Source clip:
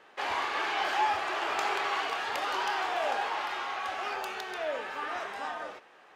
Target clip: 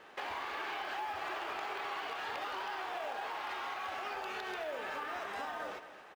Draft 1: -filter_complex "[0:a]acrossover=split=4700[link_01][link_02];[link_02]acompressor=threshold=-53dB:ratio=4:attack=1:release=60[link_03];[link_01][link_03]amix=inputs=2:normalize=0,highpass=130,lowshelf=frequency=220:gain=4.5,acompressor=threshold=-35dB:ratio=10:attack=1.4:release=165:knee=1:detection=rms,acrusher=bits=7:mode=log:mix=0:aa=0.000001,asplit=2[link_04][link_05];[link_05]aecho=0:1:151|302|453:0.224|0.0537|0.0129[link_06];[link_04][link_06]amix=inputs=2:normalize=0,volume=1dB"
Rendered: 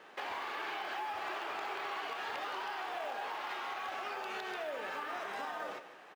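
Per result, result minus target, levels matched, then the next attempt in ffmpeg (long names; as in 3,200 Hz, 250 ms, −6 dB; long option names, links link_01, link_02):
echo 78 ms early; 125 Hz band −3.5 dB
-filter_complex "[0:a]acrossover=split=4700[link_01][link_02];[link_02]acompressor=threshold=-53dB:ratio=4:attack=1:release=60[link_03];[link_01][link_03]amix=inputs=2:normalize=0,highpass=130,lowshelf=frequency=220:gain=4.5,acompressor=threshold=-35dB:ratio=10:attack=1.4:release=165:knee=1:detection=rms,acrusher=bits=7:mode=log:mix=0:aa=0.000001,asplit=2[link_04][link_05];[link_05]aecho=0:1:229|458|687:0.224|0.0537|0.0129[link_06];[link_04][link_06]amix=inputs=2:normalize=0,volume=1dB"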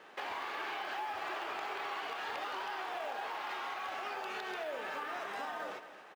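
125 Hz band −3.5 dB
-filter_complex "[0:a]acrossover=split=4700[link_01][link_02];[link_02]acompressor=threshold=-53dB:ratio=4:attack=1:release=60[link_03];[link_01][link_03]amix=inputs=2:normalize=0,lowshelf=frequency=220:gain=4.5,acompressor=threshold=-35dB:ratio=10:attack=1.4:release=165:knee=1:detection=rms,acrusher=bits=7:mode=log:mix=0:aa=0.000001,asplit=2[link_04][link_05];[link_05]aecho=0:1:229|458|687:0.224|0.0537|0.0129[link_06];[link_04][link_06]amix=inputs=2:normalize=0,volume=1dB"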